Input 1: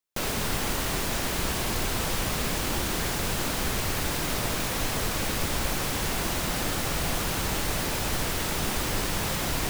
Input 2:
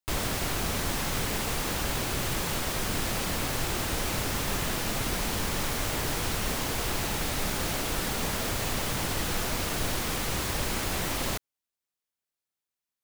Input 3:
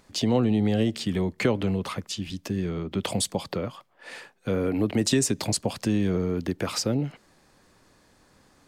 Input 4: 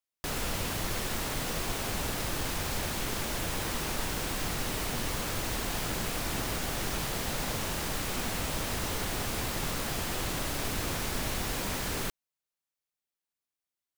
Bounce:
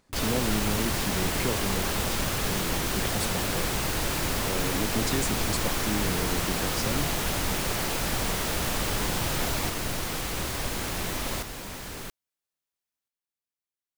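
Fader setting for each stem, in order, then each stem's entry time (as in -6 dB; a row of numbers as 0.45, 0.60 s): -3.0, -2.0, -7.5, -5.0 dB; 0.00, 0.05, 0.00, 0.00 s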